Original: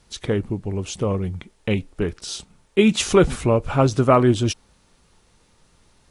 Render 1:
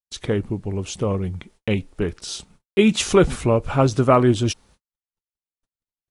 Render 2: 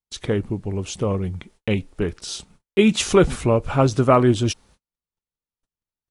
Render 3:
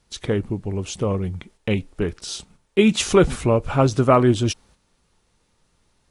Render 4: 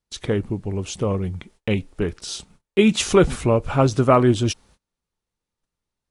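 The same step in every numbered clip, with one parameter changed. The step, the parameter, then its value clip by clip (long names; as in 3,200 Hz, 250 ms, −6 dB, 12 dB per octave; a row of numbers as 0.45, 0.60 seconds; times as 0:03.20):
noise gate, range: −55, −40, −7, −27 decibels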